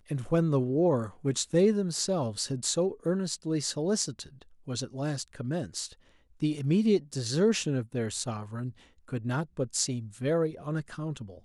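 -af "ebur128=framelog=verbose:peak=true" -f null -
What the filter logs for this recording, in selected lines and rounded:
Integrated loudness:
  I:         -29.7 LUFS
  Threshold: -40.0 LUFS
Loudness range:
  LRA:         4.8 LU
  Threshold: -50.3 LUFS
  LRA low:   -32.8 LUFS
  LRA high:  -28.0 LUFS
True peak:
  Peak:      -10.5 dBFS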